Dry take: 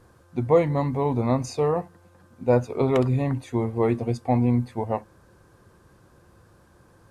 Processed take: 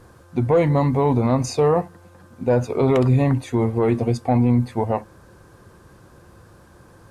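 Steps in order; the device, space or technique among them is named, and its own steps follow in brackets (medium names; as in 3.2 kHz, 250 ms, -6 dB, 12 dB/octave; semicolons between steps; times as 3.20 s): soft clipper into limiter (saturation -9.5 dBFS, distortion -23 dB; peak limiter -16.5 dBFS, peak gain reduction 5.5 dB); trim +7 dB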